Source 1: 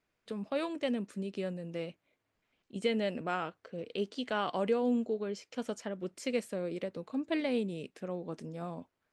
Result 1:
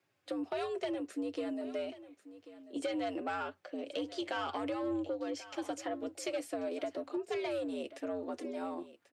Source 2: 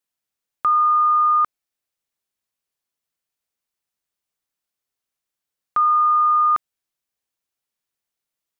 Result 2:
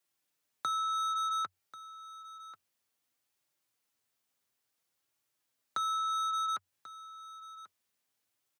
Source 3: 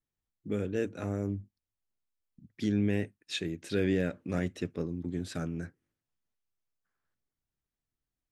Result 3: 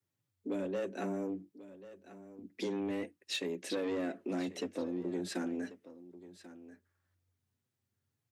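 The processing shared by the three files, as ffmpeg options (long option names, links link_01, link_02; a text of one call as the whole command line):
ffmpeg -i in.wav -filter_complex "[0:a]flanger=delay=3.8:depth=3.1:regen=-30:speed=0.58:shape=sinusoidal,asplit=2[link_01][link_02];[link_02]alimiter=limit=-24dB:level=0:latency=1:release=112,volume=1dB[link_03];[link_01][link_03]amix=inputs=2:normalize=0,asoftclip=type=tanh:threshold=-24.5dB,acompressor=threshold=-33dB:ratio=6,afreqshift=90,asplit=2[link_04][link_05];[link_05]aecho=0:1:1089:0.158[link_06];[link_04][link_06]amix=inputs=2:normalize=0" out.wav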